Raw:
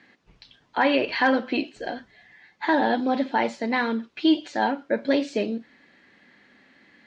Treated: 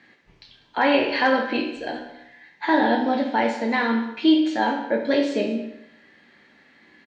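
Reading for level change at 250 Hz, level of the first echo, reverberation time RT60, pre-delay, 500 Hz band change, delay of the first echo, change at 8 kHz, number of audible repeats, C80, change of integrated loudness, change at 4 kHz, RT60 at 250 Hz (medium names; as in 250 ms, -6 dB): +3.0 dB, -17.0 dB, 0.80 s, 13 ms, +2.5 dB, 195 ms, no reading, 1, 8.5 dB, +2.5 dB, +2.5 dB, 0.75 s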